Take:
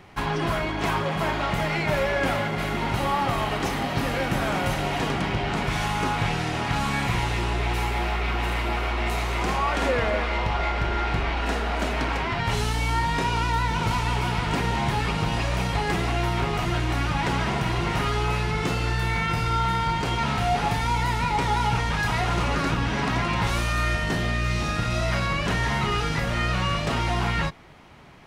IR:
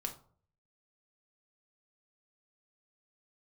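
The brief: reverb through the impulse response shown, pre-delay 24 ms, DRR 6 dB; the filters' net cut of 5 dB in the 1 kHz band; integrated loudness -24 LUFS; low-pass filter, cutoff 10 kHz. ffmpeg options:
-filter_complex "[0:a]lowpass=10000,equalizer=f=1000:t=o:g=-6.5,asplit=2[s0][s1];[1:a]atrim=start_sample=2205,adelay=24[s2];[s1][s2]afir=irnorm=-1:irlink=0,volume=0.531[s3];[s0][s3]amix=inputs=2:normalize=0,volume=1.19"

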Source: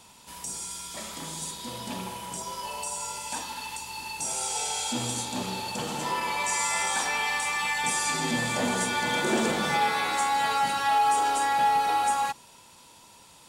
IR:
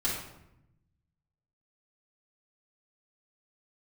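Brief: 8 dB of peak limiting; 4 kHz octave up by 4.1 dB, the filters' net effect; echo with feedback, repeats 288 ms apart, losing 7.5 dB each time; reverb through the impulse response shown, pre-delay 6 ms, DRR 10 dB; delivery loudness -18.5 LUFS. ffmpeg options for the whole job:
-filter_complex "[0:a]equalizer=f=4000:t=o:g=5,alimiter=limit=0.106:level=0:latency=1,aecho=1:1:288|576|864|1152|1440:0.422|0.177|0.0744|0.0312|0.0131,asplit=2[s0][s1];[1:a]atrim=start_sample=2205,adelay=6[s2];[s1][s2]afir=irnorm=-1:irlink=0,volume=0.133[s3];[s0][s3]amix=inputs=2:normalize=0,volume=2.66"

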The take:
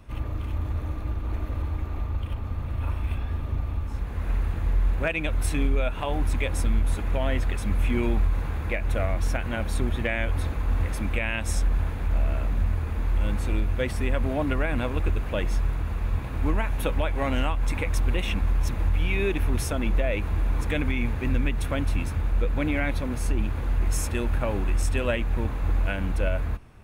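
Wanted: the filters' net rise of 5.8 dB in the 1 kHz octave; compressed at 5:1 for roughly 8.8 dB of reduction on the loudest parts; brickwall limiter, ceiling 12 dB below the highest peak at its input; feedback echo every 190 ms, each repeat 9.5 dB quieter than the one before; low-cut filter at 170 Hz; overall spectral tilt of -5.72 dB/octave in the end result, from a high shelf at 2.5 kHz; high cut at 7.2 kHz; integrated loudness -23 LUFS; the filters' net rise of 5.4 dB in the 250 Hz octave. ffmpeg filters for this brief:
-af "highpass=170,lowpass=7200,equalizer=f=250:t=o:g=7,equalizer=f=1000:t=o:g=8,highshelf=f=2500:g=-6,acompressor=threshold=0.0355:ratio=5,alimiter=level_in=1.58:limit=0.0631:level=0:latency=1,volume=0.631,aecho=1:1:190|380|570|760:0.335|0.111|0.0365|0.012,volume=5.01"

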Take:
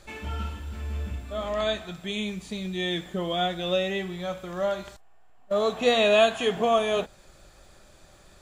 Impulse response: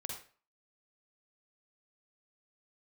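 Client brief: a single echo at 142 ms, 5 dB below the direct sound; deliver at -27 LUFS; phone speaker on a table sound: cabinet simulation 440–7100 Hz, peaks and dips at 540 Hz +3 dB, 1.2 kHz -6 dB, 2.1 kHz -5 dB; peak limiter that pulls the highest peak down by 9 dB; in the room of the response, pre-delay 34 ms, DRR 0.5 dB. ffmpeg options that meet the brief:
-filter_complex "[0:a]alimiter=limit=0.119:level=0:latency=1,aecho=1:1:142:0.562,asplit=2[s0][s1];[1:a]atrim=start_sample=2205,adelay=34[s2];[s1][s2]afir=irnorm=-1:irlink=0,volume=1.06[s3];[s0][s3]amix=inputs=2:normalize=0,highpass=f=440:w=0.5412,highpass=f=440:w=1.3066,equalizer=f=540:t=q:w=4:g=3,equalizer=f=1200:t=q:w=4:g=-6,equalizer=f=2100:t=q:w=4:g=-5,lowpass=f=7100:w=0.5412,lowpass=f=7100:w=1.3066,volume=0.891"

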